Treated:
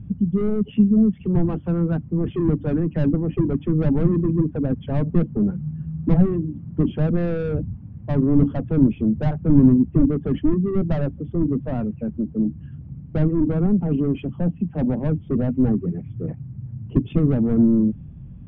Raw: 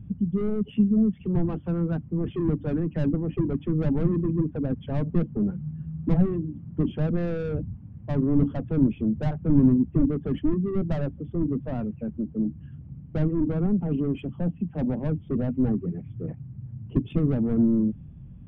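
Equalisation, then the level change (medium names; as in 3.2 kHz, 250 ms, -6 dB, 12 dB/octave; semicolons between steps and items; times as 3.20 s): distance through air 110 m; +5.0 dB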